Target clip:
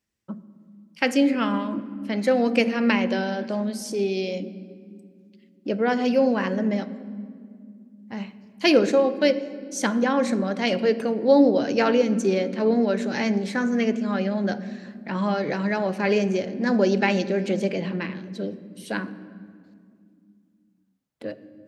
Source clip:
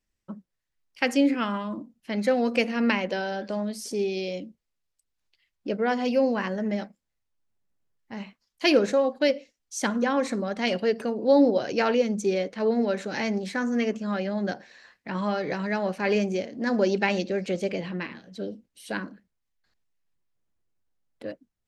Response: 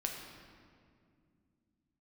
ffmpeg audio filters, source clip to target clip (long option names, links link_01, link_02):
-filter_complex "[0:a]highpass=95,asplit=2[link_01][link_02];[1:a]atrim=start_sample=2205,lowshelf=frequency=350:gain=10.5[link_03];[link_02][link_03]afir=irnorm=-1:irlink=0,volume=-11dB[link_04];[link_01][link_04]amix=inputs=2:normalize=0"